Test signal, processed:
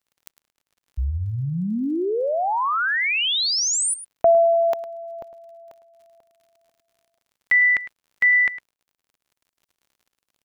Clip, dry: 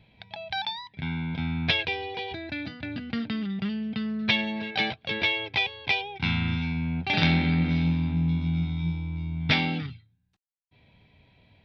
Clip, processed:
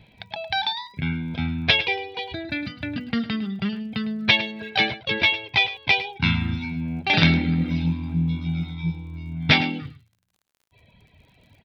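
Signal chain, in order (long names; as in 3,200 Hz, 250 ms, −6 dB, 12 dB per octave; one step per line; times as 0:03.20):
reverb reduction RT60 1.7 s
surface crackle 51 per second −55 dBFS
on a send: single-tap delay 106 ms −14.5 dB
on the sum: level +6.5 dB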